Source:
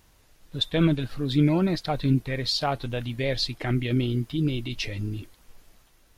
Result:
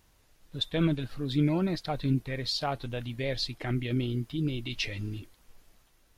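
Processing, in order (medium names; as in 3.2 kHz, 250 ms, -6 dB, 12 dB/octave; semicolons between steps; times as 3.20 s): 4.66–5.19 s: peaking EQ 2.6 kHz +5 dB 2.6 oct; trim -5 dB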